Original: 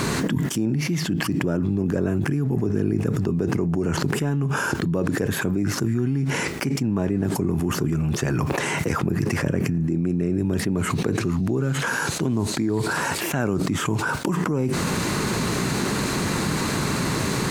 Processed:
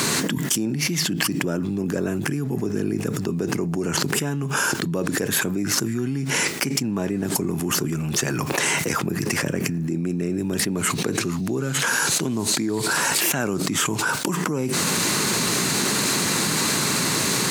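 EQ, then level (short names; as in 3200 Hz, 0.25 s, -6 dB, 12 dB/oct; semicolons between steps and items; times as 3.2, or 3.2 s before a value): HPF 140 Hz 12 dB/oct; high shelf 2500 Hz +11.5 dB; -1.0 dB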